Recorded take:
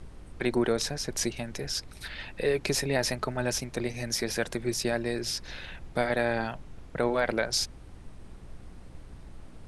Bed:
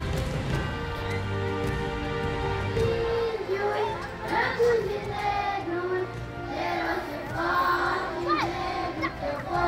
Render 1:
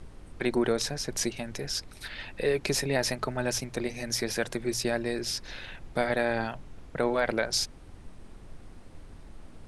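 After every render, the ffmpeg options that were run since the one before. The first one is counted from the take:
-af "bandreject=f=60:t=h:w=4,bandreject=f=120:t=h:w=4,bandreject=f=180:t=h:w=4"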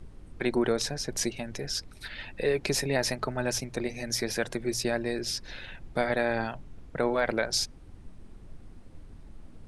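-af "afftdn=nr=6:nf=-48"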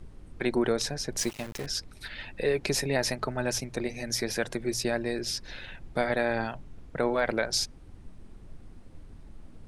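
-filter_complex "[0:a]asettb=1/sr,asplit=3[a][b][c];[a]atrim=end=1.194[d];[b]atrim=start=1.19:end=1.66,asetpts=PTS-STARTPTS,afade=t=in:d=0.004:c=qsin,afade=t=out:st=0.466:d=0.004:c=qsin,aeval=exprs='val(0)*gte(abs(val(0)),0.0141)':c=same[e];[c]atrim=start=1.656[f];[d][e]acrossfade=d=0.004:c1=hsin:c2=qsin[g];[g][f]acrossfade=d=0.004:c1=qsin:c2=hsin"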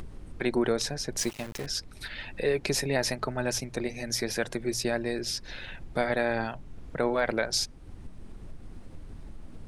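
-af "acompressor=mode=upward:threshold=-34dB:ratio=2.5"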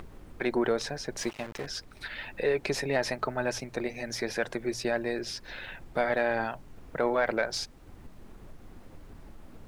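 -filter_complex "[0:a]asplit=2[a][b];[b]highpass=f=720:p=1,volume=9dB,asoftclip=type=tanh:threshold=-12dB[c];[a][c]amix=inputs=2:normalize=0,lowpass=f=1.6k:p=1,volume=-6dB,acrusher=bits=10:mix=0:aa=0.000001"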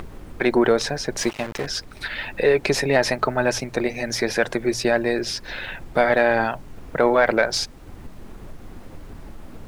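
-af "volume=9.5dB"

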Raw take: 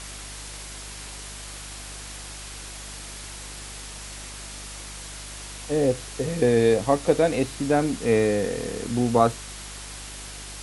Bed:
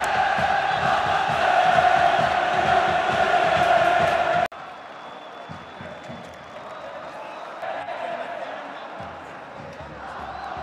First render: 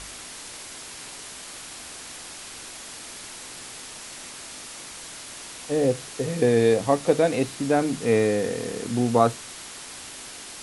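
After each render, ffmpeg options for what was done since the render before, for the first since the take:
-af "bandreject=f=50:t=h:w=4,bandreject=f=100:t=h:w=4,bandreject=f=150:t=h:w=4,bandreject=f=200:t=h:w=4"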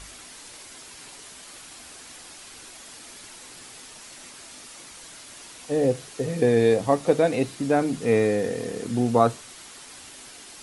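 -af "afftdn=nr=6:nf=-40"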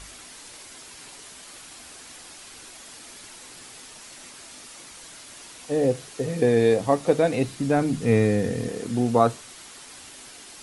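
-filter_complex "[0:a]asettb=1/sr,asplit=3[a][b][c];[a]atrim=end=7.044[d];[b]atrim=start=7.04:end=8.68,asetpts=PTS-STARTPTS,afade=t=in:d=0.004:c=qsin,afade=t=out:st=1.636:d=0.004:c=qsin,asubboost=boost=6.5:cutoff=240[e];[c]atrim=start=8.676[f];[d][e]acrossfade=d=0.004:c1=hsin:c2=qsin[g];[g][f]acrossfade=d=0.004:c1=qsin:c2=hsin"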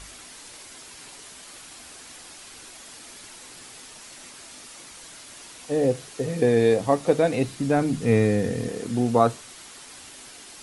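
-af anull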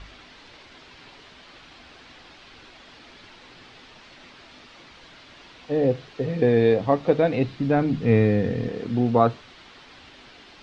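-af "lowpass=f=4.1k:w=0.5412,lowpass=f=4.1k:w=1.3066,lowshelf=f=160:g=4"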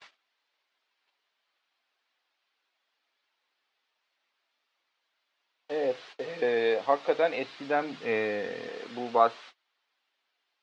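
-af "agate=range=-30dB:threshold=-42dB:ratio=16:detection=peak,highpass=660"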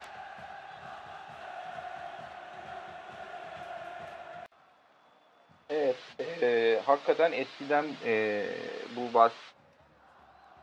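-filter_complex "[1:a]volume=-24dB[a];[0:a][a]amix=inputs=2:normalize=0"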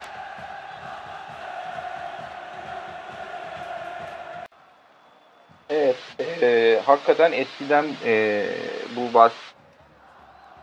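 -af "volume=8.5dB,alimiter=limit=-1dB:level=0:latency=1"

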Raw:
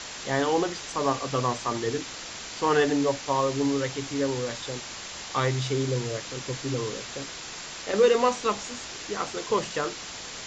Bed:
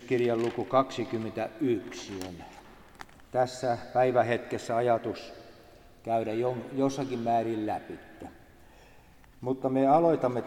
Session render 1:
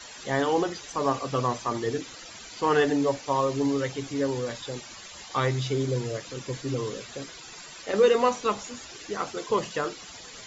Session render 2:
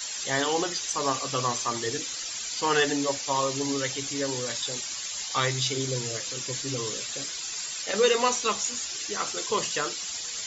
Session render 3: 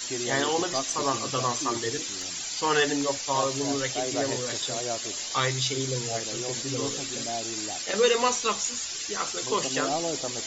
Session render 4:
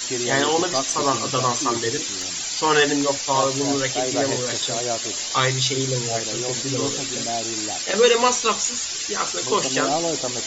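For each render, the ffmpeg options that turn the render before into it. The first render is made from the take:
-af "afftdn=nr=13:nf=-39"
-af "flanger=delay=1.3:depth=8.7:regen=-83:speed=0.38:shape=sinusoidal,crystalizer=i=7.5:c=0"
-filter_complex "[1:a]volume=-7.5dB[a];[0:a][a]amix=inputs=2:normalize=0"
-af "volume=6dB"

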